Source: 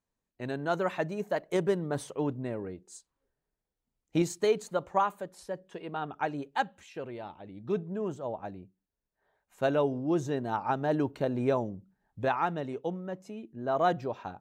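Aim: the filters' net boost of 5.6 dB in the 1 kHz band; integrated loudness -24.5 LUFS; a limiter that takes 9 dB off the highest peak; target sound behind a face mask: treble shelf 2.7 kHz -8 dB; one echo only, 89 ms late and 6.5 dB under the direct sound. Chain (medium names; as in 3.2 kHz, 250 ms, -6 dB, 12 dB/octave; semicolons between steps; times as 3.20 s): peaking EQ 1 kHz +8.5 dB; peak limiter -17 dBFS; treble shelf 2.7 kHz -8 dB; delay 89 ms -6.5 dB; trim +6.5 dB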